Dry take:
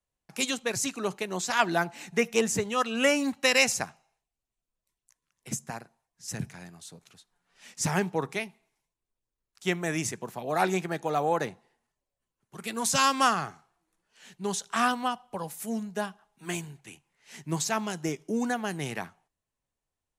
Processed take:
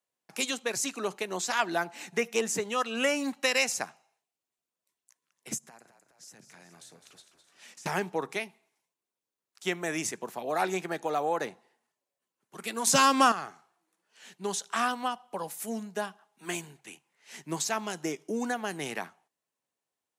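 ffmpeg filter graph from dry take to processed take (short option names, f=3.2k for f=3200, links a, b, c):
-filter_complex "[0:a]asettb=1/sr,asplit=3[a][b][c];[a]atrim=end=5.584[d];[b]atrim=start=5.58:end=7.86,asetpts=PTS-STARTPTS,afade=t=in:d=0.004:c=qsin,afade=t=out:st=2.276:d=0.004:c=qsin,acompressor=threshold=-47dB:ratio=16:attack=3.2:release=140:knee=1:detection=peak,asplit=8[e][f][g][h][i][j][k][l];[f]adelay=208,afreqshift=-48,volume=-10dB[m];[g]adelay=416,afreqshift=-96,volume=-14.3dB[n];[h]adelay=624,afreqshift=-144,volume=-18.6dB[o];[i]adelay=832,afreqshift=-192,volume=-22.9dB[p];[j]adelay=1040,afreqshift=-240,volume=-27.2dB[q];[k]adelay=1248,afreqshift=-288,volume=-31.5dB[r];[l]adelay=1456,afreqshift=-336,volume=-35.8dB[s];[e][m][n][o][p][q][r][s]amix=inputs=8:normalize=0,atrim=end_sample=100548[t];[c]atrim=start=7.856[u];[d][t]acrossfade=d=0.004:c1=hsin:c2=qsin[v];[v][u]acrossfade=d=0.004:c1=qsin:c2=hsin,asettb=1/sr,asplit=3[w][x][y];[w]atrim=end=12.874[z];[x]atrim=start=12.87:end=13.32,asetpts=PTS-STARTPTS,afade=t=in:d=0.004:c=qsin,afade=t=out:st=0.446:d=0.004:c=qsin,lowshelf=f=490:g=8,acontrast=90[aa];[y]atrim=start=13.316[ab];[z][aa]acrossfade=d=0.004:c1=hsin:c2=qsin[ac];[ac][ab]acrossfade=d=0.004:c1=qsin:c2=hsin,highpass=250,acompressor=threshold=-31dB:ratio=1.5,volume=1dB"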